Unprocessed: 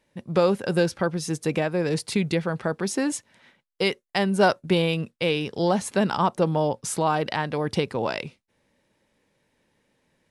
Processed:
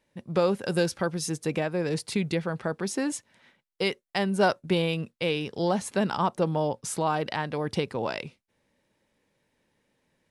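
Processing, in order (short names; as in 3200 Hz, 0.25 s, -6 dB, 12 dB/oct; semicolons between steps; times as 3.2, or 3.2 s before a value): 0.62–1.3 high shelf 4500 Hz +7 dB; gain -3.5 dB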